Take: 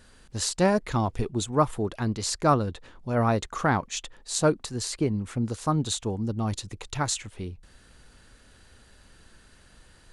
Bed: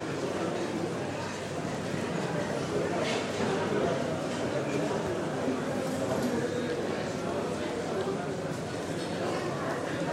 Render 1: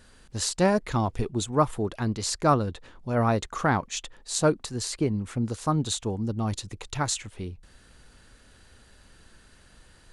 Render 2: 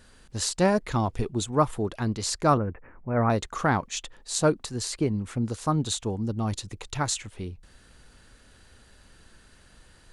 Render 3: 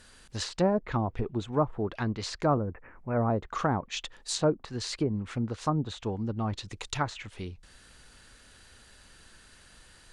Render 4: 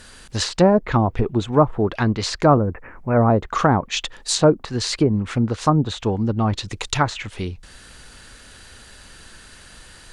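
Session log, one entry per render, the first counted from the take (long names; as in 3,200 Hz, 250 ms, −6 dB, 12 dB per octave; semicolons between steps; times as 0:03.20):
no processing that can be heard
0:02.57–0:03.30: Butterworth low-pass 2,400 Hz 72 dB per octave
treble cut that deepens with the level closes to 740 Hz, closed at −20.5 dBFS; tilt shelving filter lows −3.5 dB
level +11 dB; brickwall limiter −3 dBFS, peak gain reduction 1 dB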